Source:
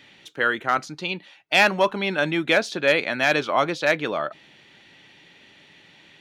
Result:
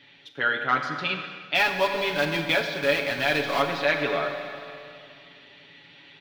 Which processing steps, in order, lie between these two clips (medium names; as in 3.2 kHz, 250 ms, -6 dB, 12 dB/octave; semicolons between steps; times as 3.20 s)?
1.55–3.63 s: block-companded coder 3-bit; resonant high shelf 5.6 kHz -10.5 dB, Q 1.5; comb 7.1 ms, depth 71%; Schroeder reverb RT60 2.4 s, combs from 32 ms, DRR 5.5 dB; gain riding within 3 dB 0.5 s; trim -6 dB